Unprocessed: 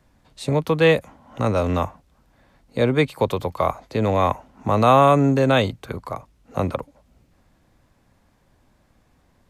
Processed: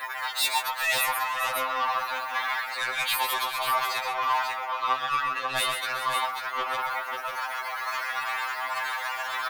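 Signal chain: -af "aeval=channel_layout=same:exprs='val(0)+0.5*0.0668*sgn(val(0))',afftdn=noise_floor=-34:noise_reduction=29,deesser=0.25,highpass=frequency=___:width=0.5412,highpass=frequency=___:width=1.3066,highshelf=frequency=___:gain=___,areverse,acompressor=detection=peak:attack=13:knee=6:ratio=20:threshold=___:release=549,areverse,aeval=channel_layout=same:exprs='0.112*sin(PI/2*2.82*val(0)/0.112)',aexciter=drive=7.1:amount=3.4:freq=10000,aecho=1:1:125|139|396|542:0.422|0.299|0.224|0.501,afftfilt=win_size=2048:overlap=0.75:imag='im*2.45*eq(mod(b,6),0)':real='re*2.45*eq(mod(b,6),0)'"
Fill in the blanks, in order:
1000, 1000, 9000, -5.5, 0.0282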